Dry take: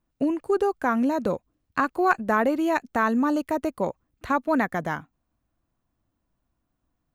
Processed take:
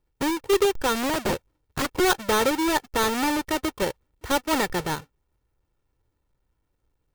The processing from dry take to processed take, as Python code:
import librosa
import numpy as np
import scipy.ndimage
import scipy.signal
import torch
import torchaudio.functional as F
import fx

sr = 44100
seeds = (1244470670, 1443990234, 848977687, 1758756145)

y = fx.halfwave_hold(x, sr)
y = y + 0.52 * np.pad(y, (int(2.2 * sr / 1000.0), 0))[:len(y)]
y = fx.overflow_wrap(y, sr, gain_db=15.0, at=(1.06, 2.0))
y = y * librosa.db_to_amplitude(-4.0)